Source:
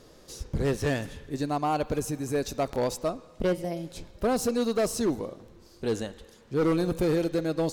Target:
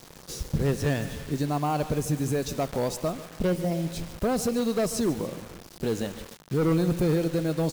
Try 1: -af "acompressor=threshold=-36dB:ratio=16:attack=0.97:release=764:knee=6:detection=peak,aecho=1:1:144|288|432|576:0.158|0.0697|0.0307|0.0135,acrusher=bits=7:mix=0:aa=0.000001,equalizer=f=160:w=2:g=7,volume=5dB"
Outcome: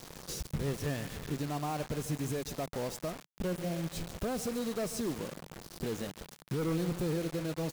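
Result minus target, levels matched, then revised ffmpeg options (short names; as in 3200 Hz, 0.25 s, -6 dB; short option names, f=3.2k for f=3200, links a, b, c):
compressor: peak gain reduction +9 dB
-af "acompressor=threshold=-26.5dB:ratio=16:attack=0.97:release=764:knee=6:detection=peak,aecho=1:1:144|288|432|576:0.158|0.0697|0.0307|0.0135,acrusher=bits=7:mix=0:aa=0.000001,equalizer=f=160:w=2:g=7,volume=5dB"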